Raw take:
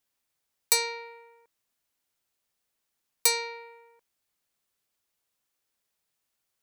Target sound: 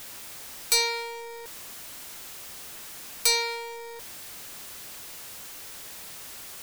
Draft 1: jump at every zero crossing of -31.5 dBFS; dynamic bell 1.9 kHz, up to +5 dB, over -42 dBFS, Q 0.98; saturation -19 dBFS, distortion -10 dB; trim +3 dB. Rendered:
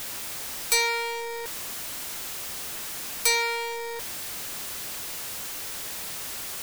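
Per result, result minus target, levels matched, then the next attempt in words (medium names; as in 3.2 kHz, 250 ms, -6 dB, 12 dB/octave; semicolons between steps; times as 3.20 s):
jump at every zero crossing: distortion +6 dB; 2 kHz band +2.0 dB
jump at every zero crossing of -38.5 dBFS; dynamic bell 1.9 kHz, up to +5 dB, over -42 dBFS, Q 0.98; saturation -19 dBFS, distortion -10 dB; trim +3 dB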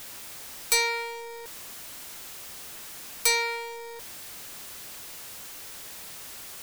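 2 kHz band +3.0 dB
jump at every zero crossing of -38.5 dBFS; dynamic bell 4.4 kHz, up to +5 dB, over -42 dBFS, Q 0.98; saturation -19 dBFS, distortion -9 dB; trim +3 dB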